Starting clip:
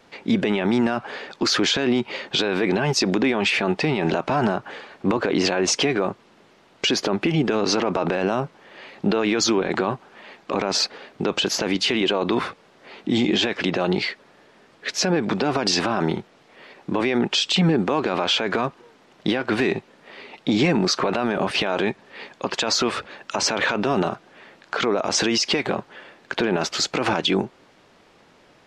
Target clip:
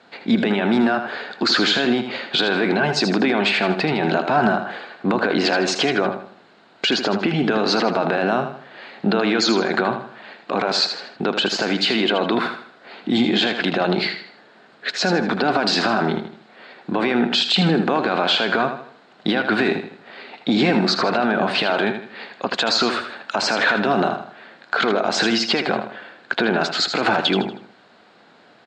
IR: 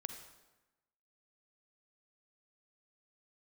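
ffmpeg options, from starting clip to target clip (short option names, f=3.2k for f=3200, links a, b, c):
-af "highpass=140,equalizer=f=220:t=q:w=4:g=4,equalizer=f=720:t=q:w=4:g=6,equalizer=f=1.5k:t=q:w=4:g=8,equalizer=f=4.1k:t=q:w=4:g=7,equalizer=f=5.9k:t=q:w=4:g=-9,lowpass=f=7.8k:w=0.5412,lowpass=f=7.8k:w=1.3066,aecho=1:1:79|158|237|316:0.376|0.143|0.0543|0.0206"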